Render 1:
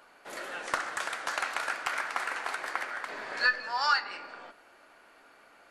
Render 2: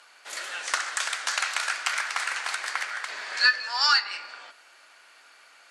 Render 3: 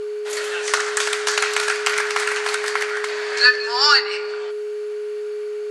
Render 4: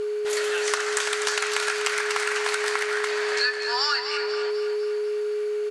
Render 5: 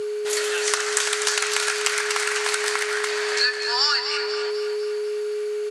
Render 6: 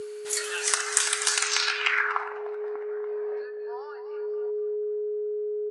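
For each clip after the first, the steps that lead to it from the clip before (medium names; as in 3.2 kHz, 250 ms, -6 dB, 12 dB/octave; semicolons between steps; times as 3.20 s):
frequency weighting ITU-R 468
whistle 420 Hz -31 dBFS; trim +6.5 dB
compression, threshold -22 dBFS, peak gain reduction 13 dB; on a send: feedback delay 248 ms, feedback 53%, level -9 dB
high-pass 120 Hz; treble shelf 3.9 kHz +8 dB
spectral noise reduction 7 dB; low-pass sweep 10 kHz -> 480 Hz, 1.36–2.48 s; trim -3.5 dB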